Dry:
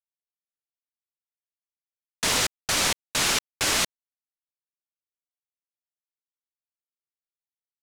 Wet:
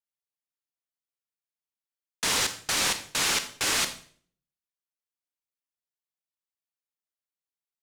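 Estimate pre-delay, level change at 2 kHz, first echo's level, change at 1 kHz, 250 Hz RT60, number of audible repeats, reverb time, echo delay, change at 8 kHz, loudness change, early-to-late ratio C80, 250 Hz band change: 27 ms, −2.0 dB, no echo audible, −2.5 dB, 0.65 s, no echo audible, 0.50 s, no echo audible, −2.0 dB, −2.0 dB, 15.0 dB, −4.0 dB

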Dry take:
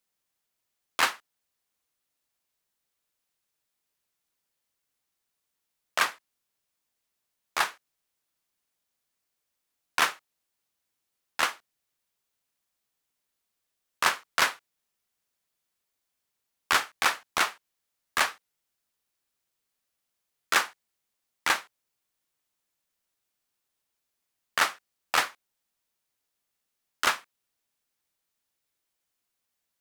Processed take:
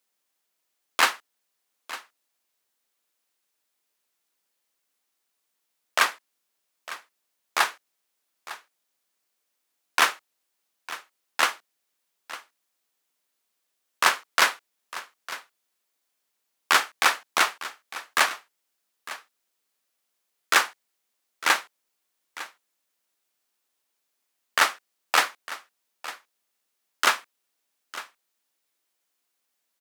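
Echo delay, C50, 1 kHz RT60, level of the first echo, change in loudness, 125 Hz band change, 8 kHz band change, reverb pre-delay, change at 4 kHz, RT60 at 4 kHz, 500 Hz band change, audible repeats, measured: 904 ms, no reverb audible, no reverb audible, −16.0 dB, +4.0 dB, can't be measured, +4.0 dB, no reverb audible, +4.0 dB, no reverb audible, +4.0 dB, 1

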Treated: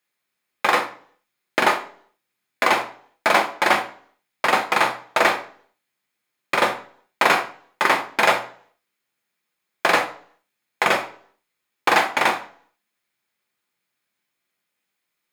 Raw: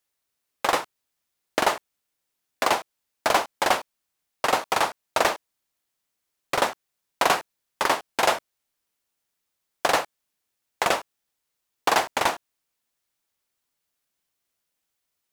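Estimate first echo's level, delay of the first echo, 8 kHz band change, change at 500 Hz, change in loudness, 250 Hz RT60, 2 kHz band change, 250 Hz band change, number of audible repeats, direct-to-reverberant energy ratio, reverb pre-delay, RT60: no echo audible, no echo audible, −2.0 dB, +2.5 dB, +4.5 dB, 0.60 s, +7.5 dB, +4.5 dB, no echo audible, 5.0 dB, 3 ms, 0.50 s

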